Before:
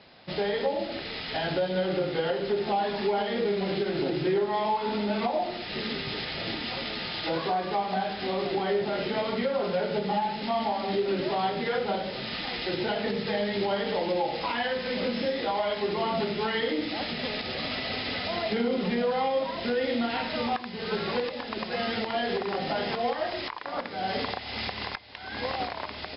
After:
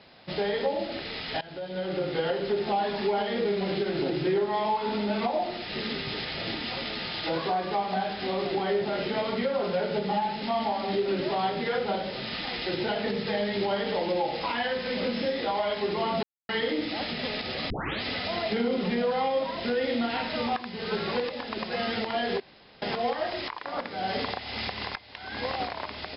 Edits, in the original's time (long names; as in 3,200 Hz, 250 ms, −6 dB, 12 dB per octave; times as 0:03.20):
0:01.41–0:02.15: fade in, from −20.5 dB
0:16.23–0:16.49: silence
0:17.70: tape start 0.32 s
0:22.40–0:22.82: fill with room tone